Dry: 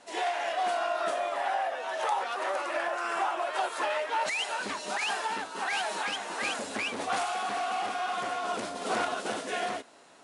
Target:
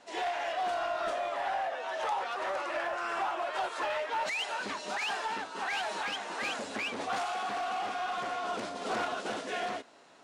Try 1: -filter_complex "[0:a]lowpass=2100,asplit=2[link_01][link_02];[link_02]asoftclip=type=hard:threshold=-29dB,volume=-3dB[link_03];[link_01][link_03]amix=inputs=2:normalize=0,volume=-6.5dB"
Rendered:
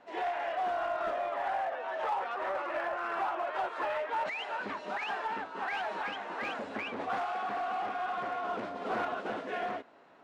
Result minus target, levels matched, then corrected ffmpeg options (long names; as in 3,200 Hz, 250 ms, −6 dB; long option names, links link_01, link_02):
8,000 Hz band −15.0 dB
-filter_complex "[0:a]lowpass=6800,asplit=2[link_01][link_02];[link_02]asoftclip=type=hard:threshold=-29dB,volume=-3dB[link_03];[link_01][link_03]amix=inputs=2:normalize=0,volume=-6.5dB"